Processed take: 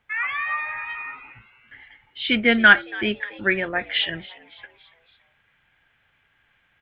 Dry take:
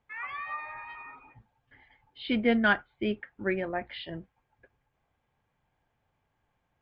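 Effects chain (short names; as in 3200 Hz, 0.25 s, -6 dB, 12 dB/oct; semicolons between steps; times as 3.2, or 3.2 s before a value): band shelf 2200 Hz +9.5 dB, from 3.94 s +16 dB; frequency-shifting echo 0.281 s, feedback 51%, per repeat +110 Hz, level -20 dB; gain +4 dB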